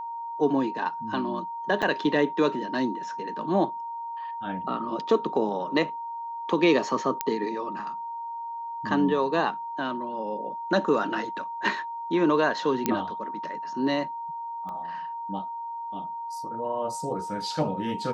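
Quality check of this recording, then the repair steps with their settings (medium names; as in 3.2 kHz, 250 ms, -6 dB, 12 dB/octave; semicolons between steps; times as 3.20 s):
whine 930 Hz -32 dBFS
1.82–1.83 s: dropout 6.1 ms
7.21 s: pop -8 dBFS
12.86 s: pop -8 dBFS
14.69 s: pop -27 dBFS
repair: de-click; band-stop 930 Hz, Q 30; interpolate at 1.82 s, 6.1 ms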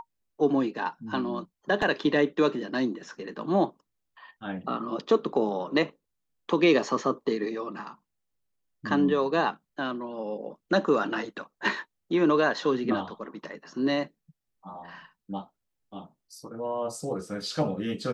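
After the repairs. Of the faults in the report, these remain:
12.86 s: pop
14.69 s: pop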